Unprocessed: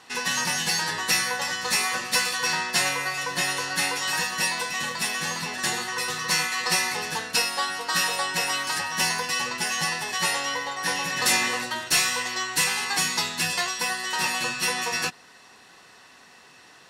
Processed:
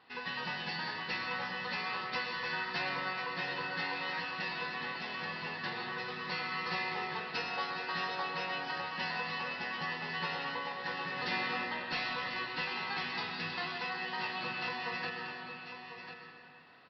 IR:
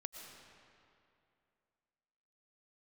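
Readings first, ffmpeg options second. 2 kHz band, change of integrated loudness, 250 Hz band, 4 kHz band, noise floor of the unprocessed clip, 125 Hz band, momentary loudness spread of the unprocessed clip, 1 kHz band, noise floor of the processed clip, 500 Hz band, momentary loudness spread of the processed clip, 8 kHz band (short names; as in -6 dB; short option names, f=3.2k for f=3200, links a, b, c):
-10.0 dB, -12.0 dB, -7.5 dB, -14.0 dB, -52 dBFS, -8.0 dB, 4 LU, -8.5 dB, -50 dBFS, -8.0 dB, 4 LU, under -35 dB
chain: -filter_complex "[0:a]aemphasis=mode=reproduction:type=50fm,aecho=1:1:1044:0.335[a];[1:a]atrim=start_sample=2205[b];[a][b]afir=irnorm=-1:irlink=0,aresample=11025,aresample=44100,volume=-6dB"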